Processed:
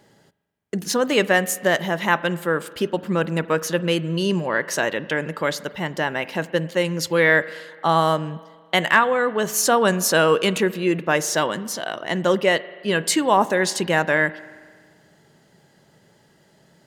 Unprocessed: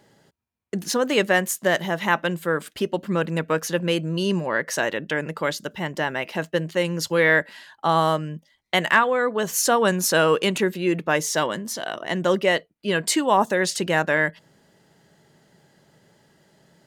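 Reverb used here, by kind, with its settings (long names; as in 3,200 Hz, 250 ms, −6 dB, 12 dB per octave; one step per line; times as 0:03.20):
spring reverb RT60 1.7 s, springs 42 ms, chirp 40 ms, DRR 17 dB
level +1.5 dB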